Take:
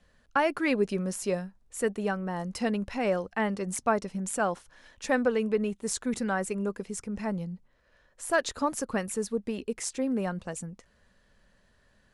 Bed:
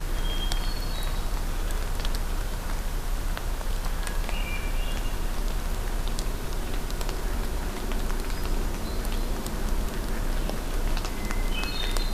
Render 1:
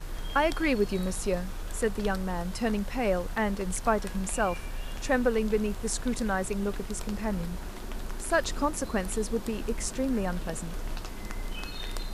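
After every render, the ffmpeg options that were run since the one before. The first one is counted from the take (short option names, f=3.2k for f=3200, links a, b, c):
-filter_complex "[1:a]volume=-8dB[a];[0:a][a]amix=inputs=2:normalize=0"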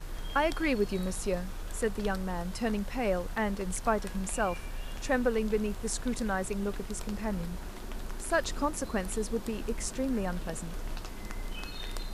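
-af "volume=-2.5dB"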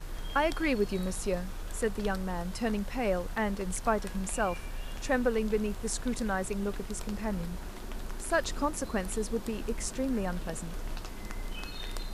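-af anull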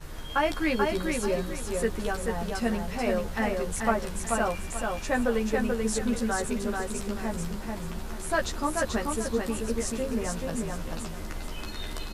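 -filter_complex "[0:a]asplit=2[a][b];[b]adelay=13,volume=-2.5dB[c];[a][c]amix=inputs=2:normalize=0,aecho=1:1:435|870|1305|1740:0.668|0.201|0.0602|0.018"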